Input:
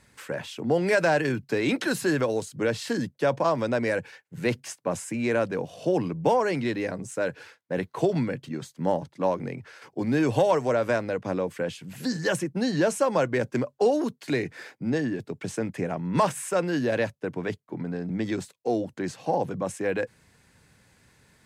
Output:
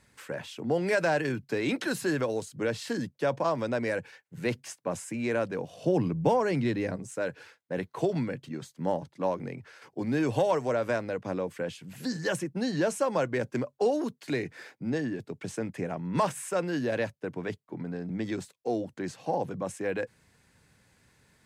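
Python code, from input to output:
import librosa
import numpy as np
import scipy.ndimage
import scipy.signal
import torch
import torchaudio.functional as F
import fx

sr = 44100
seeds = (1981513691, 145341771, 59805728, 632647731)

y = fx.low_shelf(x, sr, hz=220.0, db=9.5, at=(5.84, 6.96))
y = F.gain(torch.from_numpy(y), -4.0).numpy()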